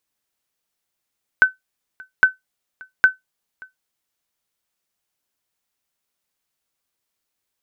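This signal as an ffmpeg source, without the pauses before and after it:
-f lavfi -i "aevalsrc='0.708*(sin(2*PI*1520*mod(t,0.81))*exp(-6.91*mod(t,0.81)/0.15)+0.0447*sin(2*PI*1520*max(mod(t,0.81)-0.58,0))*exp(-6.91*max(mod(t,0.81)-0.58,0)/0.15))':d=2.43:s=44100"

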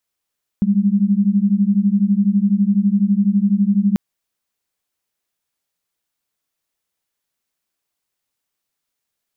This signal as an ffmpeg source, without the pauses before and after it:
-f lavfi -i "aevalsrc='0.168*(sin(2*PI*195*t)+sin(2*PI*207*t))':d=3.34:s=44100"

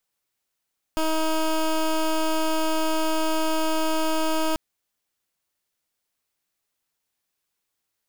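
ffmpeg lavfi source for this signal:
-f lavfi -i "aevalsrc='0.075*(2*lt(mod(317*t,1),0.16)-1)':d=3.59:s=44100"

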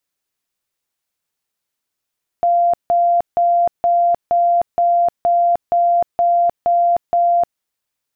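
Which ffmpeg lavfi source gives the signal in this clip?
-f lavfi -i "aevalsrc='0.282*sin(2*PI*693*mod(t,0.47))*lt(mod(t,0.47),212/693)':d=5.17:s=44100"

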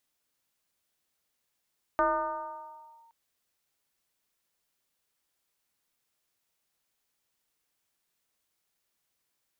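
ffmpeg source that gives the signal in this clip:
-f lavfi -i "aevalsrc='0.0944*pow(10,-3*t/1.8)*sin(2*PI*919*t+1.6*clip(1-t/1.12,0,1)*sin(2*PI*0.32*919*t))':d=1.12:s=44100"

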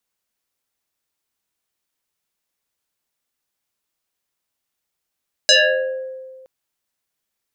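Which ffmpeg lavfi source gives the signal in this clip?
-f lavfi -i "aevalsrc='0.422*pow(10,-3*t/1.73)*sin(2*PI*522*t+5.6*pow(10,-3*t/0.95)*sin(2*PI*2.17*522*t))':d=0.97:s=44100"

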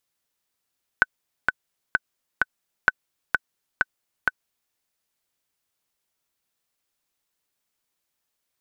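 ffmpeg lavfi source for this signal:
-f lavfi -i "aevalsrc='pow(10,(-2-4*gte(mod(t,4*60/129),60/129))/20)*sin(2*PI*1510*mod(t,60/129))*exp(-6.91*mod(t,60/129)/0.03)':d=3.72:s=44100"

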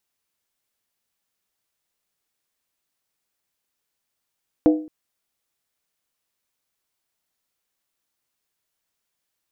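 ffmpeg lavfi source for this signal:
-f lavfi -i "aevalsrc='0.355*pow(10,-3*t/0.43)*sin(2*PI*309*t)+0.158*pow(10,-3*t/0.341)*sin(2*PI*492.5*t)+0.0708*pow(10,-3*t/0.294)*sin(2*PI*660*t)+0.0316*pow(10,-3*t/0.284)*sin(2*PI*709.5*t)+0.0141*pow(10,-3*t/0.264)*sin(2*PI*819.8*t)':d=0.22:s=44100"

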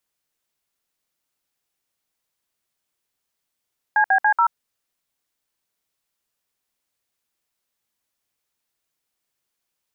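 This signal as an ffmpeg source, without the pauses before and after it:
-f lavfi -i "aevalsrc='0.158*clip(min(mod(t,0.142),0.082-mod(t,0.142))/0.002,0,1)*(eq(floor(t/0.142),0)*(sin(2*PI*852*mod(t,0.142))+sin(2*PI*1633*mod(t,0.142)))+eq(floor(t/0.142),1)*(sin(2*PI*770*mod(t,0.142))+sin(2*PI*1633*mod(t,0.142)))+eq(floor(t/0.142),2)*(sin(2*PI*852*mod(t,0.142))+sin(2*PI*1633*mod(t,0.142)))+eq(floor(t/0.142),3)*(sin(2*PI*941*mod(t,0.142))+sin(2*PI*1336*mod(t,0.142))))':d=0.568:s=44100"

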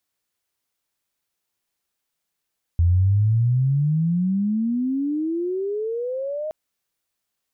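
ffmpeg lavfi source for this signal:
-f lavfi -i "aevalsrc='pow(10,(-13.5-11.5*t/3.72)/20)*sin(2*PI*83*3.72/log(630/83)*(exp(log(630/83)*t/3.72)-1))':d=3.72:s=44100"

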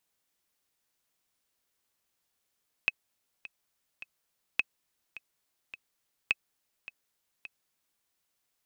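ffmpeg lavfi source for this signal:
-f lavfi -i "aevalsrc='pow(10,(-11.5-17.5*gte(mod(t,3*60/105),60/105))/20)*sin(2*PI*2570*mod(t,60/105))*exp(-6.91*mod(t,60/105)/0.03)':d=5.14:s=44100"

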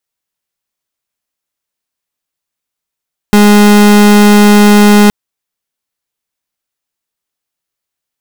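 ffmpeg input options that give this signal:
-f lavfi -i "aevalsrc='0.631*(2*lt(mod(207*t,1),0.36)-1)':d=1.77:s=44100"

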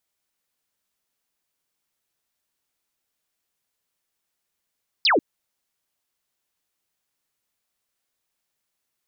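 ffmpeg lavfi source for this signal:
-f lavfi -i "aevalsrc='0.178*clip(t/0.002,0,1)*clip((0.14-t)/0.002,0,1)*sin(2*PI*5300*0.14/log(250/5300)*(exp(log(250/5300)*t/0.14)-1))':d=0.14:s=44100"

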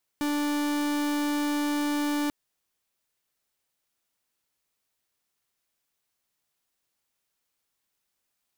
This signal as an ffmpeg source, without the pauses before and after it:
-f lavfi -i "aevalsrc='0.0447*(2*lt(mod(293*t,1),0.44)-1)':d=2.09:s=44100"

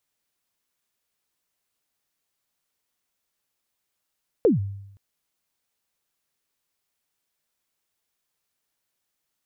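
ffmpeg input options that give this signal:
-f lavfi -i "aevalsrc='0.251*pow(10,-3*t/0.83)*sin(2*PI*(520*0.143/log(99/520)*(exp(log(99/520)*min(t,0.143)/0.143)-1)+99*max(t-0.143,0)))':d=0.52:s=44100"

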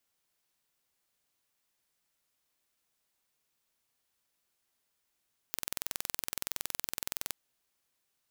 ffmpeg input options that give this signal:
-f lavfi -i "aevalsrc='0.473*eq(mod(n,2051),0)':d=1.77:s=44100"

